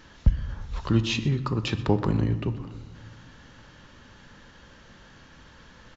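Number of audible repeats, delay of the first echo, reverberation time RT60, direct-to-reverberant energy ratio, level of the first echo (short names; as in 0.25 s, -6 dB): 1, 0.124 s, 1.4 s, 10.5 dB, -18.5 dB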